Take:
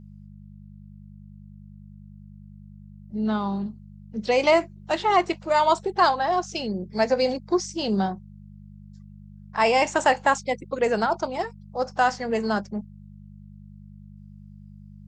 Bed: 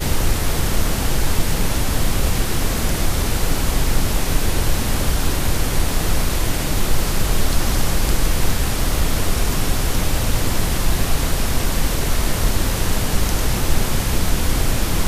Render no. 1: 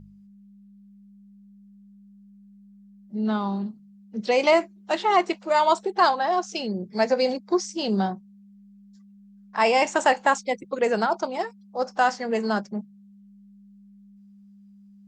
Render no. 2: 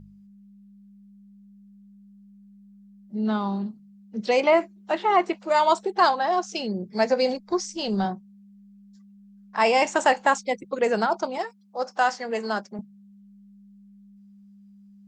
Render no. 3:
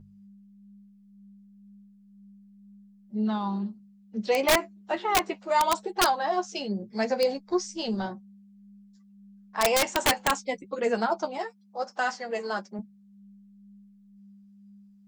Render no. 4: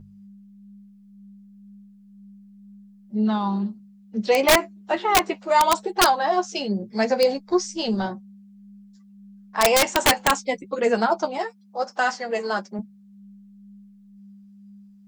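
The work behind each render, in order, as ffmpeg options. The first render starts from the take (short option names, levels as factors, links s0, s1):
-af "bandreject=f=50:t=h:w=4,bandreject=f=100:t=h:w=4,bandreject=f=150:t=h:w=4"
-filter_complex "[0:a]asettb=1/sr,asplit=3[s0][s1][s2];[s0]atrim=end=4.404[s3];[s1]atrim=start=4.4:end=5.4,asetpts=PTS-STARTPTS,afade=t=in:d=0.004:c=qsin,afade=t=out:st=0.996:d=0.004:c=qsin,acrossover=split=2900[s4][s5];[s5]acompressor=threshold=0.00398:ratio=4:attack=1:release=60[s6];[s4][s6]amix=inputs=2:normalize=0[s7];[s2]atrim=start=5.396[s8];[s3][s7]acrossfade=d=0.004:c1=hsin:c2=qsin[s9];[s9][s8]acrossfade=d=0.004:c1=qsin:c2=hsin,asplit=3[s10][s11][s12];[s10]afade=t=out:st=7.34:d=0.02[s13];[s11]asubboost=boost=6.5:cutoff=92,afade=t=in:st=7.34:d=0.02,afade=t=out:st=8.04:d=0.02[s14];[s12]afade=t=in:st=8.04:d=0.02[s15];[s13][s14][s15]amix=inputs=3:normalize=0,asettb=1/sr,asplit=3[s16][s17][s18];[s16]atrim=end=11.384[s19];[s17]atrim=start=11.38:end=12.79,asetpts=PTS-STARTPTS,afade=t=in:d=0.004:c=qsin,afade=t=out:st=1.406:d=0.004:c=qsin,highpass=f=420:p=1[s20];[s18]atrim=start=12.786[s21];[s19][s20]acrossfade=d=0.004:c1=hsin:c2=qsin[s22];[s22][s21]acrossfade=d=0.004:c1=qsin:c2=hsin"
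-af "flanger=delay=8.5:depth=2.6:regen=18:speed=1:shape=sinusoidal,aeval=exprs='(mod(5.01*val(0)+1,2)-1)/5.01':c=same"
-af "volume=1.88"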